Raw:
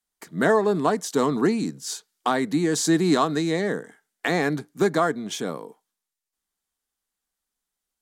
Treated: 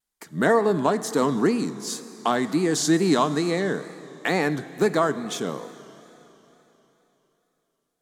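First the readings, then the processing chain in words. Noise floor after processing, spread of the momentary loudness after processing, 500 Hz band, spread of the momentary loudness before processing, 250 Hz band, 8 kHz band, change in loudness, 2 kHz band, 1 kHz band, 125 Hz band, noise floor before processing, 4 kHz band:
-77 dBFS, 12 LU, +0.5 dB, 12 LU, 0.0 dB, 0.0 dB, 0.0 dB, 0.0 dB, 0.0 dB, 0.0 dB, -85 dBFS, +0.5 dB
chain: Schroeder reverb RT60 3.6 s, combs from 28 ms, DRR 13.5 dB; wow and flutter 96 cents

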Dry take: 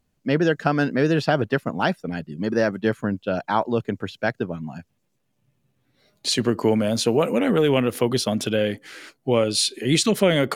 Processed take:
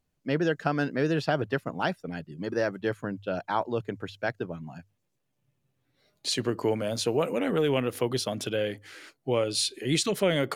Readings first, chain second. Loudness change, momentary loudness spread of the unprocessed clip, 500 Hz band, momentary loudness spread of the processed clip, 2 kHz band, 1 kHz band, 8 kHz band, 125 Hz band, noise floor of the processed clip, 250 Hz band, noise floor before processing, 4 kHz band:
-6.5 dB, 11 LU, -6.0 dB, 11 LU, -6.0 dB, -6.0 dB, -6.0 dB, -6.5 dB, -77 dBFS, -8.0 dB, -71 dBFS, -6.0 dB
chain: peaking EQ 220 Hz -9 dB 0.22 oct; hum notches 50/100 Hz; trim -6 dB

